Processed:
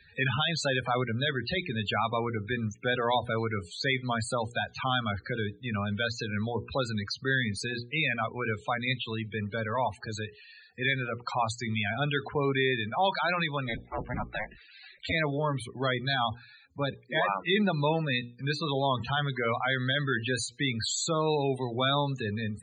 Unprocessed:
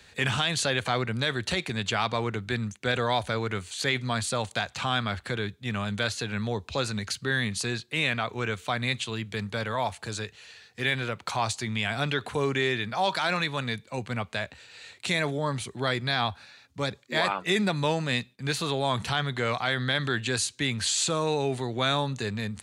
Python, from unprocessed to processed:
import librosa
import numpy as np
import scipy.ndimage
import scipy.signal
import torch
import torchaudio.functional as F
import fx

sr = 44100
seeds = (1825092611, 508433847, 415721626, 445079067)

y = fx.cycle_switch(x, sr, every=2, mode='inverted', at=(13.66, 15.11), fade=0.02)
y = fx.hum_notches(y, sr, base_hz=60, count=8)
y = fx.spec_topn(y, sr, count=32)